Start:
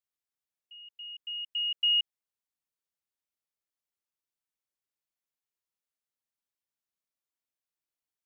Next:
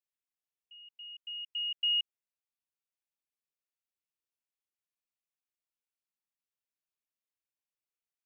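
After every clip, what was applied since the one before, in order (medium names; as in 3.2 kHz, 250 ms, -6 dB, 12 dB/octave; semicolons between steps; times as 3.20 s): peaking EQ 2.6 kHz +5.5 dB 0.41 oct; trim -7.5 dB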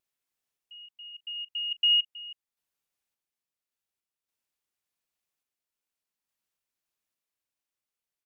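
vibrato 0.52 Hz 6 cents; delay 319 ms -15 dB; random-step tremolo; trim +8 dB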